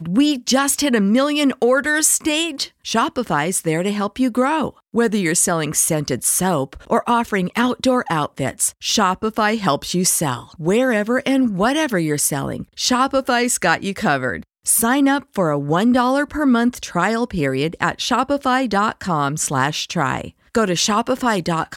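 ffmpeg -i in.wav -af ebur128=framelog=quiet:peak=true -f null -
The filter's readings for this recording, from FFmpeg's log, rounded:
Integrated loudness:
  I:         -18.3 LUFS
  Threshold: -28.3 LUFS
Loudness range:
  LRA:         1.8 LU
  Threshold: -38.4 LUFS
  LRA low:   -19.4 LUFS
  LRA high:  -17.5 LUFS
True peak:
  Peak:       -2.2 dBFS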